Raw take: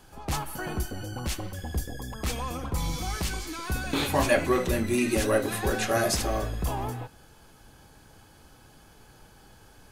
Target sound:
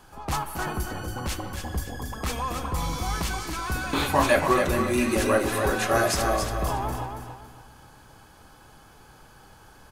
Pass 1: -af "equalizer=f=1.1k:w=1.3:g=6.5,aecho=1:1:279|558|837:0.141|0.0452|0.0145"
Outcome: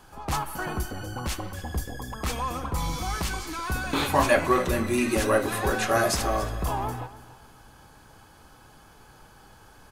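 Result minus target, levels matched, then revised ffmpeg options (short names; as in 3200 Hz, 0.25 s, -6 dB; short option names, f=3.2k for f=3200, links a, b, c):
echo-to-direct -10.5 dB
-af "equalizer=f=1.1k:w=1.3:g=6.5,aecho=1:1:279|558|837|1116:0.473|0.151|0.0485|0.0155"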